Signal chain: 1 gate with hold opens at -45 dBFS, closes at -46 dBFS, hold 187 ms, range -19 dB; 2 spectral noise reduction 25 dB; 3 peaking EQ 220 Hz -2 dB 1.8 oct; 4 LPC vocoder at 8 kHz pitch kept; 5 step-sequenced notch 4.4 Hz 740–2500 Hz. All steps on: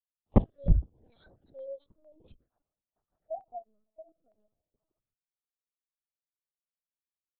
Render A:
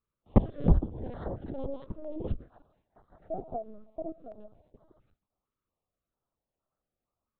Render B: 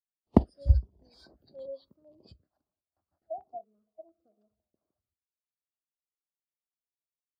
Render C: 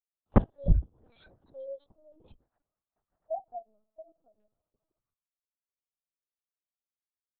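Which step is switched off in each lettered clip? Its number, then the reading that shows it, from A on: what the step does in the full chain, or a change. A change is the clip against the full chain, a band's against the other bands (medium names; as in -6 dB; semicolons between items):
2, momentary loudness spread change -3 LU; 4, 250 Hz band +1.5 dB; 5, 1 kHz band +3.0 dB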